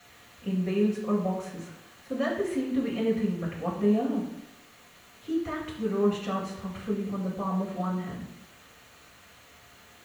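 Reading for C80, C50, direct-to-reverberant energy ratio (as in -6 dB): 8.0 dB, 5.0 dB, -7.0 dB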